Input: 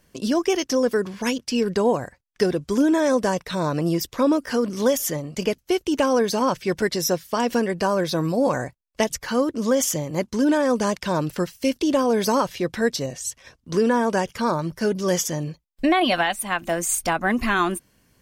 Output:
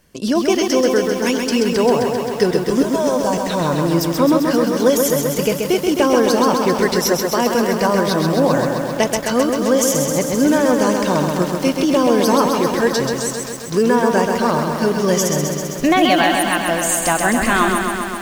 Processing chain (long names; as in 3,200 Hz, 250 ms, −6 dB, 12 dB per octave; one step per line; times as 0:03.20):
0:02.82–0:03.33: phaser with its sweep stopped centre 800 Hz, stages 4
feedback echo at a low word length 131 ms, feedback 80%, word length 7 bits, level −4.5 dB
level +4 dB